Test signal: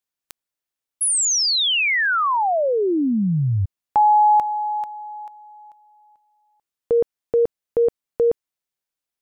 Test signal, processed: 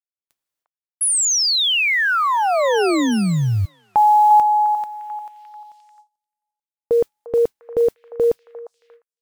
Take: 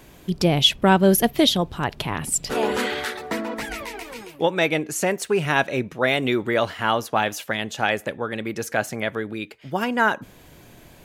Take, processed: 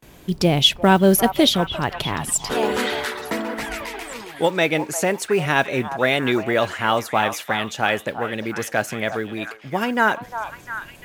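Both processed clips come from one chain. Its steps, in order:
noise that follows the level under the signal 33 dB
echo through a band-pass that steps 351 ms, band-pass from 910 Hz, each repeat 0.7 octaves, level −7 dB
noise gate with hold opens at −38 dBFS, closes at −45 dBFS, hold 272 ms, range −27 dB
level +1.5 dB

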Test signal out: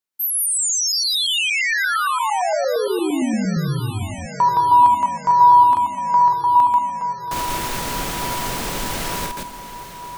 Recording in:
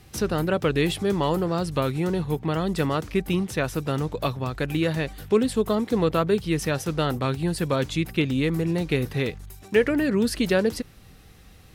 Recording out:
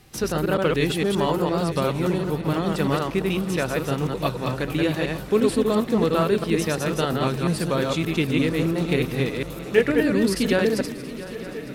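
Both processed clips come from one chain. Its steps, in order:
delay that plays each chunk backwards 115 ms, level −2 dB
parametric band 76 Hz −9.5 dB 0.86 octaves
on a send: feedback echo with a long and a short gap by turns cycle 904 ms, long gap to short 3 to 1, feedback 71%, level −17 dB

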